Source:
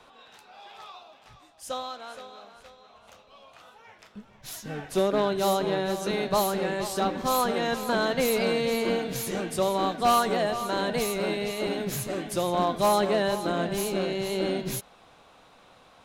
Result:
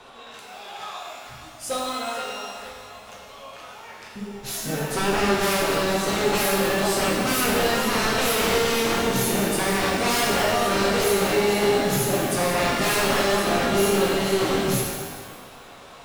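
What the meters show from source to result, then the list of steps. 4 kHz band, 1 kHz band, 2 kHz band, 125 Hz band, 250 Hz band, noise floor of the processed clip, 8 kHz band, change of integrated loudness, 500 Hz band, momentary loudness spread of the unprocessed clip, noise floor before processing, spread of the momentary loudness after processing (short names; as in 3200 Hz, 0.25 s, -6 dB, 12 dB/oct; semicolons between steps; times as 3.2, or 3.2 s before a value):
+8.0 dB, +3.0 dB, +9.0 dB, +6.5 dB, +5.0 dB, -44 dBFS, +9.0 dB, +5.0 dB, +4.0 dB, 14 LU, -56 dBFS, 19 LU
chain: sine folder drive 10 dB, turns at -15.5 dBFS; shimmer reverb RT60 1.4 s, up +12 st, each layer -8 dB, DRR -2.5 dB; gain -8 dB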